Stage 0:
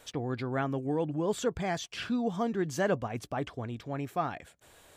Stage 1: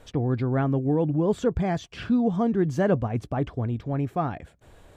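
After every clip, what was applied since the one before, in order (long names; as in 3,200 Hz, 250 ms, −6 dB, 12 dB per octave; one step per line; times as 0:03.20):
spectral tilt −3 dB per octave
level +2.5 dB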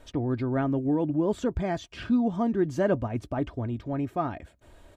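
comb filter 3.2 ms, depth 42%
level −2.5 dB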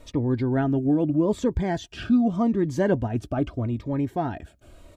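phaser whose notches keep moving one way falling 0.81 Hz
level +4.5 dB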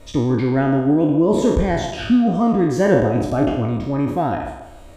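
peak hold with a decay on every bin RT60 0.83 s
delay with a band-pass on its return 141 ms, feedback 35%, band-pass 680 Hz, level −8 dB
level +4.5 dB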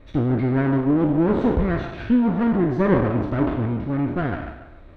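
lower of the sound and its delayed copy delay 0.5 ms
high-frequency loss of the air 380 metres
level −2 dB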